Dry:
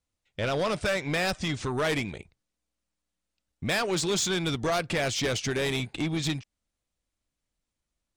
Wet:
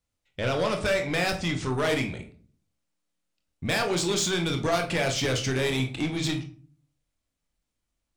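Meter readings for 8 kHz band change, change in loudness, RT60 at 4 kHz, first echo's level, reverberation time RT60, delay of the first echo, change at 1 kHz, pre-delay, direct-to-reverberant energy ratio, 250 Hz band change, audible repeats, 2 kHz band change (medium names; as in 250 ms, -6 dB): +0.5 dB, +1.5 dB, 0.30 s, no echo, 0.45 s, no echo, +1.5 dB, 22 ms, 4.0 dB, +2.0 dB, no echo, +1.5 dB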